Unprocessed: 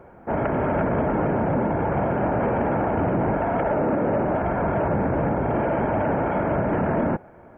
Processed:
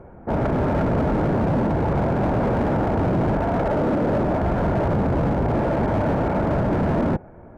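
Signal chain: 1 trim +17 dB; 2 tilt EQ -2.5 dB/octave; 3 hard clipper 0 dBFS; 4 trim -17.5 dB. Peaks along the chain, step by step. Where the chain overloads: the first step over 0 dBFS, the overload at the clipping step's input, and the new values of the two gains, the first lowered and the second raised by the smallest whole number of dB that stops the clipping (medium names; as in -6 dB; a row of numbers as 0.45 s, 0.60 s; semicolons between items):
+3.0 dBFS, +8.5 dBFS, 0.0 dBFS, -17.5 dBFS; step 1, 8.5 dB; step 1 +8 dB, step 4 -8.5 dB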